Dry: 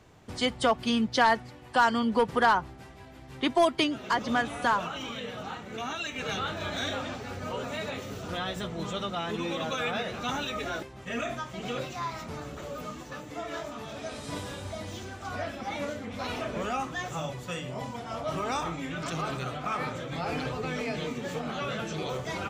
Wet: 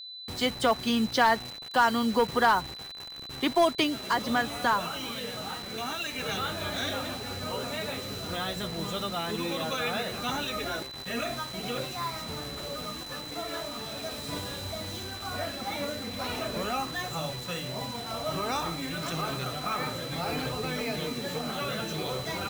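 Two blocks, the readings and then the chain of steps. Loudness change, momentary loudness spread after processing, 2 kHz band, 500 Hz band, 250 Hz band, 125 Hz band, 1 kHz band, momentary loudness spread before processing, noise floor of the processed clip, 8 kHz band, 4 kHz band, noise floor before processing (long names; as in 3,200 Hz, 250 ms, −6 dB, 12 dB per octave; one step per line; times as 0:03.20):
+0.5 dB, 11 LU, 0.0 dB, 0.0 dB, 0.0 dB, 0.0 dB, 0.0 dB, 14 LU, −41 dBFS, +4.0 dB, +3.5 dB, −47 dBFS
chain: bit reduction 7 bits
steady tone 4,000 Hz −40 dBFS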